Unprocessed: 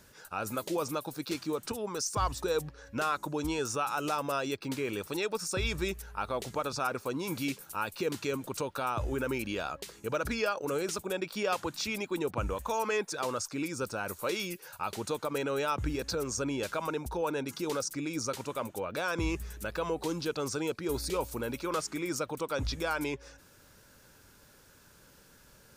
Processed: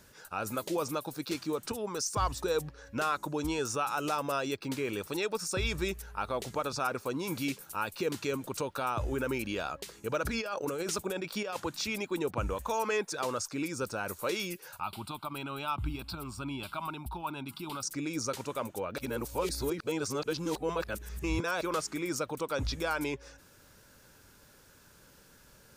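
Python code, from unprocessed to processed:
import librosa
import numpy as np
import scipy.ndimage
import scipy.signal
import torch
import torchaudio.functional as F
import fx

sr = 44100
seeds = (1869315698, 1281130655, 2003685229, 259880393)

y = fx.over_compress(x, sr, threshold_db=-34.0, ratio=-1.0, at=(10.24, 11.6))
y = fx.fixed_phaser(y, sr, hz=1800.0, stages=6, at=(14.8, 17.83))
y = fx.edit(y, sr, fx.reverse_span(start_s=18.98, length_s=2.63), tone=tone)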